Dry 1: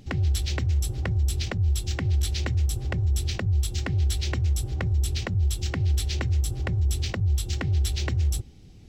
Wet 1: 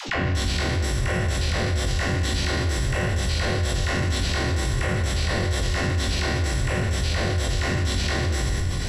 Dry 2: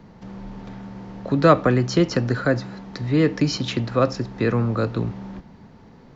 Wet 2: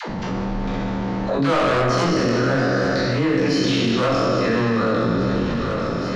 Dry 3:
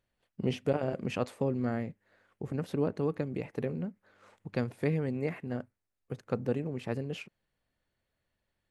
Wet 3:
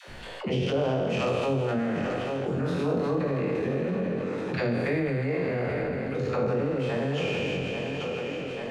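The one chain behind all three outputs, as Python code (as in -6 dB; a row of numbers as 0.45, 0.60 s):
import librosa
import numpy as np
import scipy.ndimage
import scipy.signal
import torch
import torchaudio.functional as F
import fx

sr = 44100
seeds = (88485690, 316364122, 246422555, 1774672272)

p1 = fx.spec_trails(x, sr, decay_s=2.34)
p2 = fx.hum_notches(p1, sr, base_hz=50, count=8)
p3 = fx.level_steps(p2, sr, step_db=14)
p4 = p2 + F.gain(torch.from_numpy(p3), 2.0).numpy()
p5 = np.clip(p4, -10.0 ** (-10.0 / 20.0), 10.0 ** (-10.0 / 20.0))
p6 = fx.air_absorb(p5, sr, metres=66.0)
p7 = fx.doubler(p6, sr, ms=22.0, db=-5.0)
p8 = fx.dispersion(p7, sr, late='lows', ms=87.0, hz=440.0)
p9 = p8 + fx.echo_thinned(p8, sr, ms=837, feedback_pct=53, hz=160.0, wet_db=-15.0, dry=0)
p10 = fx.env_flatten(p9, sr, amount_pct=70)
y = F.gain(torch.from_numpy(p10), -8.5).numpy()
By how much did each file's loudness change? 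+2.0, +1.0, +6.0 LU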